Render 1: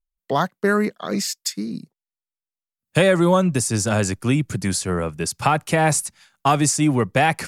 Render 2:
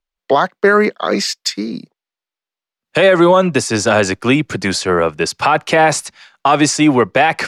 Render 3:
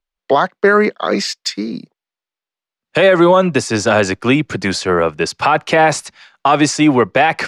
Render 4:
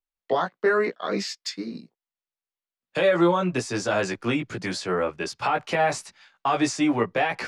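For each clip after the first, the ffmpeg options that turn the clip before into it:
-filter_complex "[0:a]acrossover=split=290 5400:gain=0.2 1 0.112[a][b][c];[a][b][c]amix=inputs=3:normalize=0,alimiter=level_in=13dB:limit=-1dB:release=50:level=0:latency=1,volume=-1dB"
-af "highshelf=f=10k:g=-11"
-af "flanger=delay=15.5:depth=2:speed=0.78,volume=-8dB"

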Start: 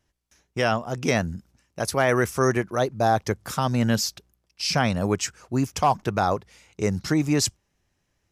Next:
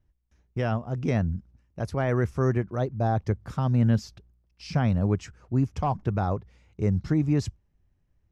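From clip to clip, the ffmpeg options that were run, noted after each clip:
-af "aemphasis=mode=reproduction:type=riaa,volume=-8.5dB"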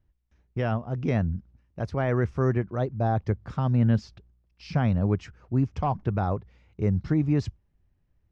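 -af "lowpass=4.3k"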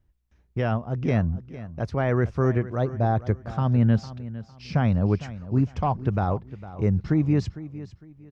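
-af "aecho=1:1:455|910|1365:0.168|0.047|0.0132,volume=2dB"

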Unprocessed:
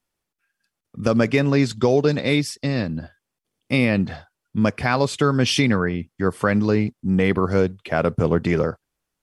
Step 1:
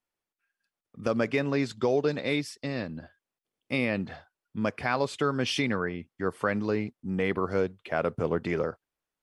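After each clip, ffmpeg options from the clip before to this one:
-af "bass=f=250:g=-7,treble=f=4k:g=-5,volume=-6.5dB"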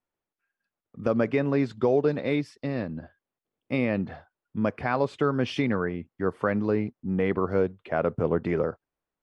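-af "lowpass=f=1.2k:p=1,volume=3.5dB"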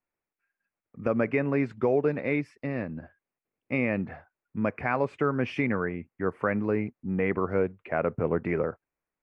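-af "highshelf=f=2.9k:t=q:w=3:g=-6.5,volume=-2dB"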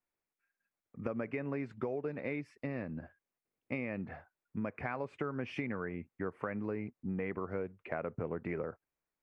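-af "acompressor=threshold=-30dB:ratio=6,volume=-3.5dB"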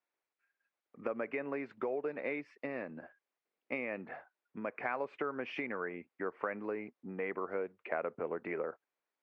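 -af "highpass=370,lowpass=3.8k,volume=3dB"

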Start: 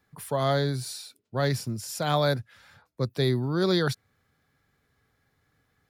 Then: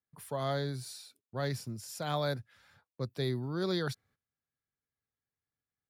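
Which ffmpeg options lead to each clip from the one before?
-af "agate=range=-18dB:threshold=-56dB:ratio=16:detection=peak,volume=-8.5dB"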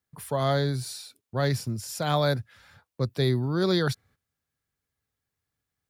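-af "equalizer=f=63:w=0.97:g=6,volume=8dB"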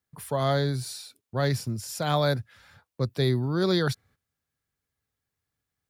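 -af anull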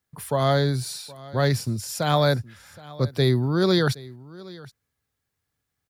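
-af "aecho=1:1:770:0.0944,volume=4dB"

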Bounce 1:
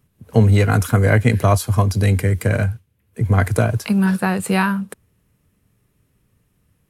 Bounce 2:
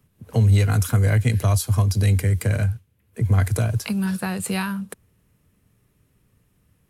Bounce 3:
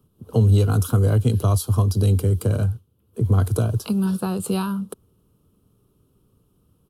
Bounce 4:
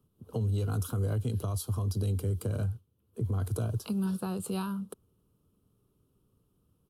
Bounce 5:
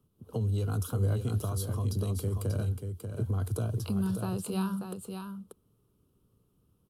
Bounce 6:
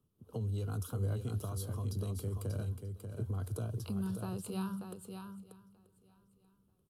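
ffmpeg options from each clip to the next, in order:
-filter_complex "[0:a]acrossover=split=130|3000[a][b][c];[b]acompressor=threshold=-30dB:ratio=2.5[d];[a][d][c]amix=inputs=3:normalize=0"
-af "firequalizer=gain_entry='entry(110,0);entry(390,7);entry(620,-1);entry(1300,2);entry(1900,-23);entry(3000,-1);entry(7000,-6);entry(10000,-1)':delay=0.05:min_phase=1"
-af "alimiter=limit=-14.5dB:level=0:latency=1:release=72,volume=-9dB"
-af "aecho=1:1:587:0.473"
-af "aecho=1:1:934|1868:0.0794|0.0222,volume=-6.5dB"

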